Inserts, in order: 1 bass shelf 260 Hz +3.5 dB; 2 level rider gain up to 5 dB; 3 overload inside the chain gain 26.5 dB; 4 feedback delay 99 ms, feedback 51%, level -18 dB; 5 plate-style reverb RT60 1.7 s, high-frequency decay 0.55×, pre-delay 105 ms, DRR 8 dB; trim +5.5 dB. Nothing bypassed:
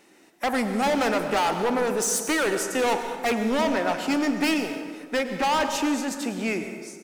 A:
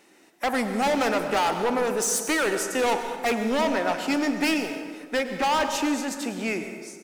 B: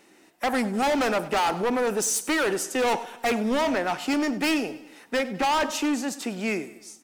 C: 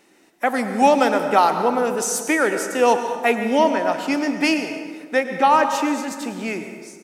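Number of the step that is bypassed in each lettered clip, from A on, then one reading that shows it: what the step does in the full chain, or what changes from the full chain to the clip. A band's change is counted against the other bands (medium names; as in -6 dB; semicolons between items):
1, 125 Hz band -2.0 dB; 5, crest factor change -5.0 dB; 3, distortion -5 dB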